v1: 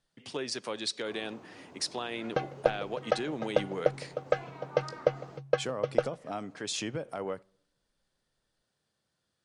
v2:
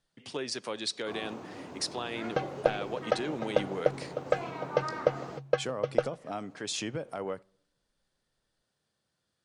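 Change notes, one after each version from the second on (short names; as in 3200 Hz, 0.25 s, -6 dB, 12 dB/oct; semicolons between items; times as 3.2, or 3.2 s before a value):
first sound +8.0 dB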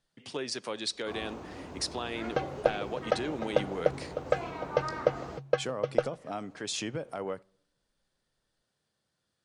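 first sound: remove HPF 110 Hz 24 dB/oct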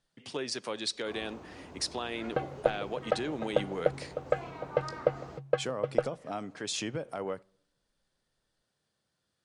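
first sound -5.0 dB; second sound: add air absorption 320 m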